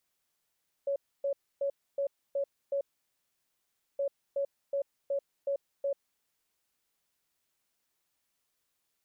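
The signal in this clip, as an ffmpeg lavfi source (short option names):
-f lavfi -i "aevalsrc='0.0422*sin(2*PI*558*t)*clip(min(mod(mod(t,3.12),0.37),0.09-mod(mod(t,3.12),0.37))/0.005,0,1)*lt(mod(t,3.12),2.22)':d=6.24:s=44100"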